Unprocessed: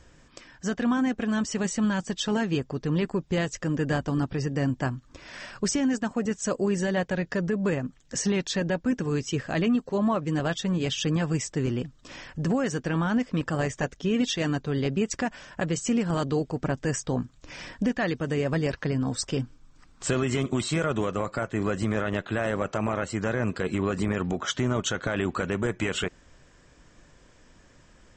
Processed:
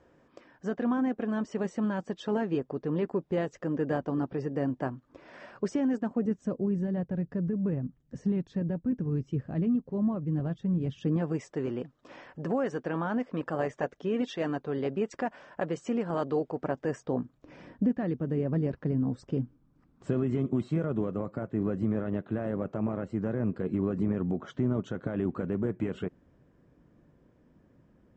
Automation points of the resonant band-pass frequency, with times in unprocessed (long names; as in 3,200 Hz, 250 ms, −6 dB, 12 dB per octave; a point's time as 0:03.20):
resonant band-pass, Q 0.78
0:05.86 480 Hz
0:06.69 130 Hz
0:10.82 130 Hz
0:11.44 610 Hz
0:16.74 610 Hz
0:17.96 210 Hz